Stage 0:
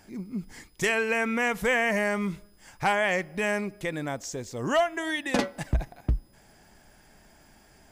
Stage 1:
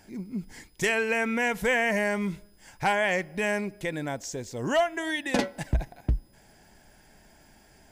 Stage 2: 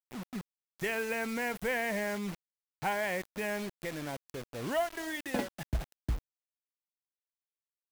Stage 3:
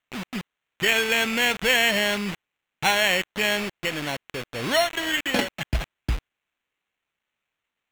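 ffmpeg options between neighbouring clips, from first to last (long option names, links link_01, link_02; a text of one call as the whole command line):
ffmpeg -i in.wav -af "bandreject=frequency=1200:width=6.3" out.wav
ffmpeg -i in.wav -af "equalizer=frequency=6600:width_type=o:width=1.5:gain=-10,acrusher=bits=5:mix=0:aa=0.000001,volume=-7dB" out.wav
ffmpeg -i in.wav -af "acrusher=samples=9:mix=1:aa=0.000001,equalizer=frequency=2700:width=0.74:gain=10,volume=7dB" out.wav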